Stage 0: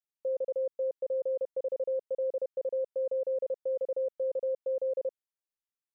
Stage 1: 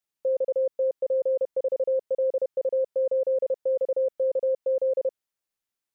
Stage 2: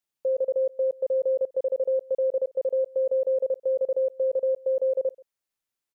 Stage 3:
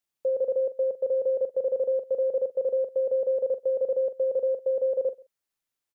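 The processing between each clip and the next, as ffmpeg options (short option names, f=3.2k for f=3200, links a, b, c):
-af "acontrast=67"
-af "aecho=1:1:133:0.0668"
-filter_complex "[0:a]asplit=2[a][b];[b]adelay=43,volume=-12dB[c];[a][c]amix=inputs=2:normalize=0"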